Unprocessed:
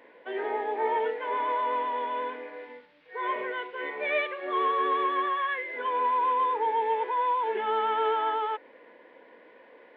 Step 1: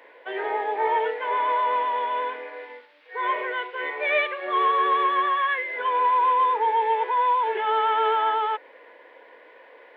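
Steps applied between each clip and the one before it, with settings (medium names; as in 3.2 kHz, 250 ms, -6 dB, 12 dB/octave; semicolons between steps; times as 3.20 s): Bessel high-pass 500 Hz, order 4; trim +6 dB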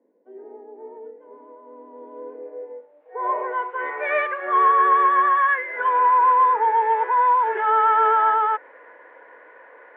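low-pass sweep 210 Hz -> 1.5 kHz, 1.69–4.02 s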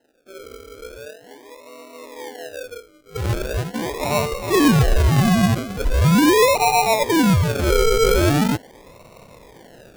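decimation with a swept rate 38×, swing 60% 0.41 Hz; trim +2 dB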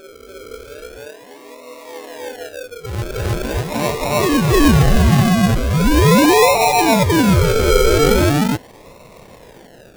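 reverse echo 310 ms -3.5 dB; trim +2 dB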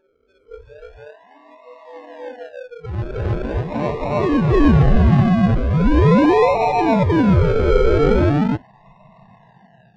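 spectral noise reduction 21 dB; tape spacing loss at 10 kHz 36 dB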